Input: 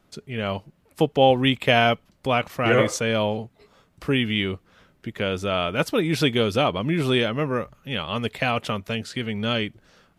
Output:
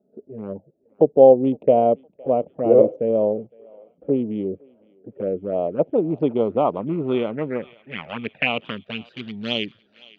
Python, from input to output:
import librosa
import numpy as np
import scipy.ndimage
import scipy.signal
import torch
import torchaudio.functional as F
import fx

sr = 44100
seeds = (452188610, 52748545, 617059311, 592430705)

y = fx.wiener(x, sr, points=41)
y = fx.env_flanger(y, sr, rest_ms=4.8, full_db=-21.0)
y = scipy.signal.sosfilt(scipy.signal.butter(2, 220.0, 'highpass', fs=sr, output='sos'), y)
y = fx.echo_thinned(y, sr, ms=512, feedback_pct=59, hz=950.0, wet_db=-21)
y = fx.filter_sweep_lowpass(y, sr, from_hz=560.0, to_hz=4200.0, start_s=5.52, end_s=9.32, q=2.3)
y = y * 10.0 ** (2.5 / 20.0)